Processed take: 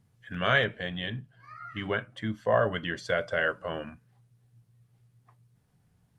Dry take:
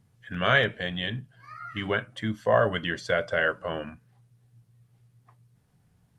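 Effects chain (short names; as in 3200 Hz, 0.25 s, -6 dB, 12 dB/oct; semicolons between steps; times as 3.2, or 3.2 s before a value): 0.63–2.97 high shelf 4600 Hz -6 dB; gain -2.5 dB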